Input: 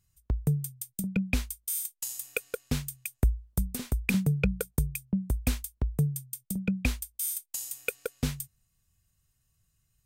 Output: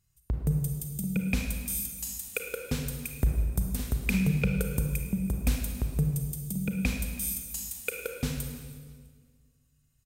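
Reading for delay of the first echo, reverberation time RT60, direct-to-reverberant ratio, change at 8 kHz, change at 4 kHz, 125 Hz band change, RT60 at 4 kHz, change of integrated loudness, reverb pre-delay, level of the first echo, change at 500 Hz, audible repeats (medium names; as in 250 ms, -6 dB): 327 ms, 1.7 s, 2.5 dB, 0.0 dB, 0.0 dB, +1.0 dB, 1.5 s, +0.5 dB, 31 ms, -21.0 dB, +0.5 dB, 2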